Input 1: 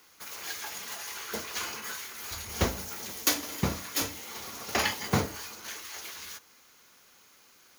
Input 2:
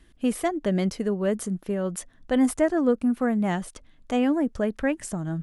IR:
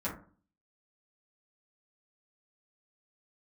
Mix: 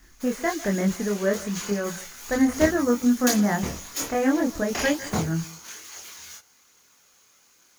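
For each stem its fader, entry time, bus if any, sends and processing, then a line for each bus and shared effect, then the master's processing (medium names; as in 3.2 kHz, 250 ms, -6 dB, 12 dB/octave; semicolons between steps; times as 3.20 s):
+0.5 dB, 0.00 s, no send, no echo send, none
+2.5 dB, 0.00 s, no send, echo send -18.5 dB, resonant high shelf 2.7 kHz -14 dB, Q 3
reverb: none
echo: delay 151 ms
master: peaking EQ 6.9 kHz +7 dB 0.59 oct; chorus voices 2, 0.59 Hz, delay 25 ms, depth 1 ms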